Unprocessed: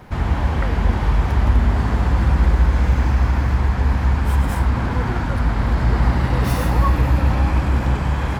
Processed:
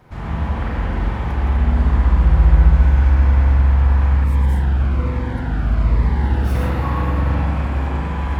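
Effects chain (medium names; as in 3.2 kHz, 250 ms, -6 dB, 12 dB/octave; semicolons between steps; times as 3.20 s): spring tank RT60 2 s, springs 38/44 ms, chirp 60 ms, DRR -6 dB; 4.24–6.55 s: Shepard-style phaser falling 1.2 Hz; trim -9 dB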